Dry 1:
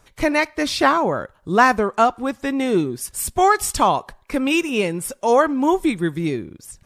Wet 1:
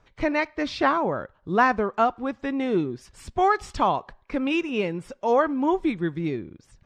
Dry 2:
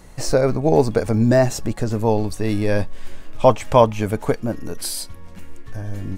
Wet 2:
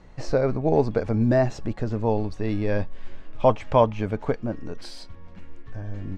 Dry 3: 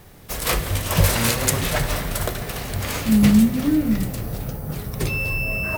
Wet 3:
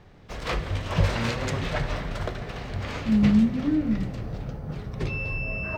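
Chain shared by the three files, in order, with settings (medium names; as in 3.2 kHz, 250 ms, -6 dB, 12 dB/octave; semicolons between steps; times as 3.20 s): distance through air 170 m; trim -4.5 dB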